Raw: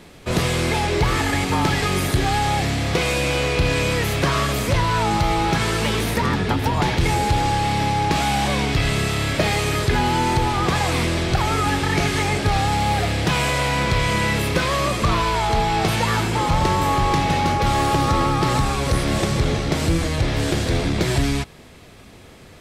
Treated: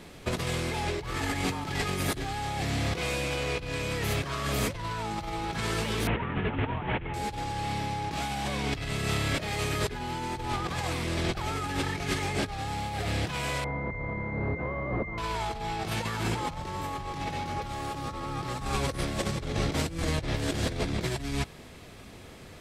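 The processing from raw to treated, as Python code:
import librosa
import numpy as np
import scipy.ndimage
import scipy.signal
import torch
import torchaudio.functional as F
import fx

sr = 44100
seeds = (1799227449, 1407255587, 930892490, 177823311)

y = fx.delta_mod(x, sr, bps=16000, step_db=-24.0, at=(6.07, 7.14))
y = fx.over_compress(y, sr, threshold_db=-23.0, ratio=-0.5)
y = fx.pwm(y, sr, carrier_hz=2100.0, at=(13.64, 15.18))
y = y * librosa.db_to_amplitude(-7.0)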